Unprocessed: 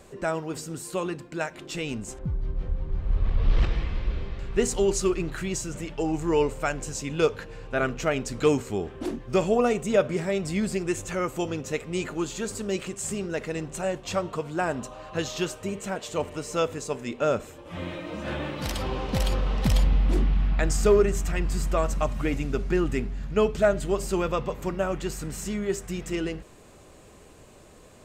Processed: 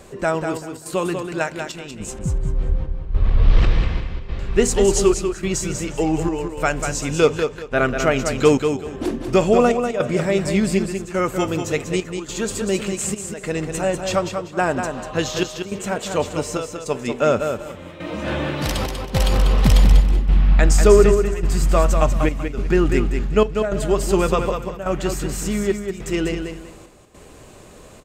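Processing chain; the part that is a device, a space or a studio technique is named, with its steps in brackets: trance gate with a delay (step gate "xxxx..xx" 105 bpm -12 dB; feedback echo 0.193 s, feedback 24%, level -6.5 dB); gain +7 dB

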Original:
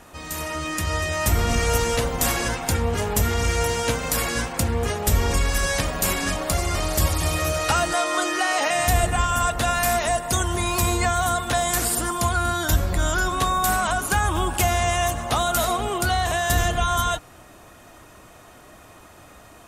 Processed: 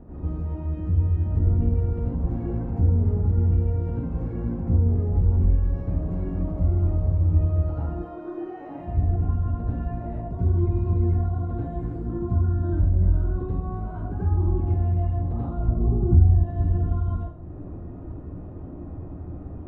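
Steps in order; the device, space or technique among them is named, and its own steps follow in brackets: 15.59–16.35 tilt -4 dB/oct; television next door (compressor 3:1, threshold -39 dBFS, peak gain reduction 22 dB; LPF 290 Hz 12 dB/oct; reverb RT60 0.60 s, pre-delay 79 ms, DRR -7.5 dB); gain +7.5 dB

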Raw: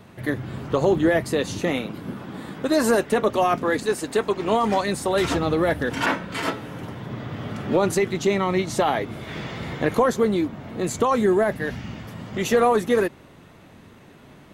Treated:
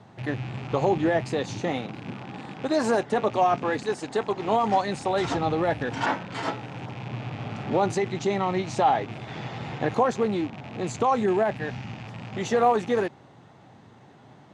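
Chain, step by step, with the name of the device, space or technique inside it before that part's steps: car door speaker with a rattle (rattling part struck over -37 dBFS, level -25 dBFS; speaker cabinet 99–7400 Hz, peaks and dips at 120 Hz +9 dB, 800 Hz +10 dB, 2500 Hz -5 dB); gain -5 dB

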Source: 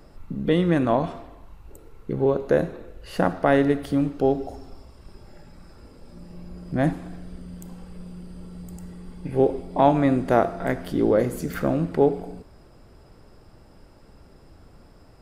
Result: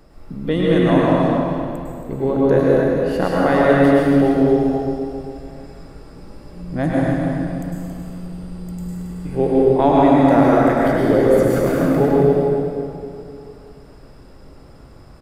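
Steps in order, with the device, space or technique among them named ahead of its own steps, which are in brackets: cave (echo 0.274 s -8.5 dB; reverb RT60 2.6 s, pre-delay 97 ms, DRR -5.5 dB)

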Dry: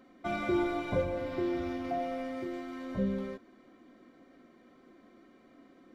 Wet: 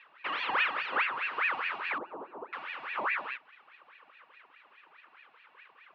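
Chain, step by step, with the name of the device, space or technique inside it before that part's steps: voice changer toy (ring modulator with a swept carrier 1300 Hz, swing 70%, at 4.8 Hz; speaker cabinet 580–3900 Hz, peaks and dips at 690 Hz -8 dB, 1200 Hz +4 dB, 2700 Hz +6 dB); 1.98–2.53 EQ curve 130 Hz 0 dB, 380 Hz +10 dB, 910 Hz -1 dB, 1900 Hz -28 dB; gain +3 dB

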